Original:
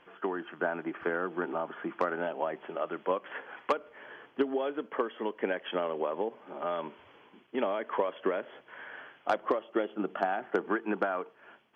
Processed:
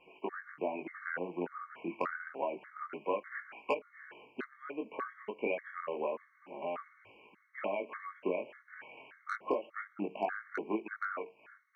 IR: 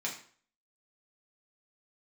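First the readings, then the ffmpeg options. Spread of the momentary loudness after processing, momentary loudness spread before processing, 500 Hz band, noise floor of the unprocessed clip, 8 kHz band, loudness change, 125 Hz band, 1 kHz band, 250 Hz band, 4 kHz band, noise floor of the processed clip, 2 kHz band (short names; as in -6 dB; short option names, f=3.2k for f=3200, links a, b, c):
12 LU, 10 LU, -6.0 dB, -61 dBFS, n/a, -6.0 dB, -5.5 dB, -6.0 dB, -6.0 dB, -10.0 dB, -67 dBFS, -4.0 dB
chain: -af "equalizer=f=2.4k:t=o:w=0.39:g=10.5,flanger=delay=18.5:depth=5:speed=0.28,asuperstop=centerf=3400:order=4:qfactor=4.2,afftfilt=real='re*gt(sin(2*PI*1.7*pts/sr)*(1-2*mod(floor(b*sr/1024/1100),2)),0)':imag='im*gt(sin(2*PI*1.7*pts/sr)*(1-2*mod(floor(b*sr/1024/1100),2)),0)':win_size=1024:overlap=0.75"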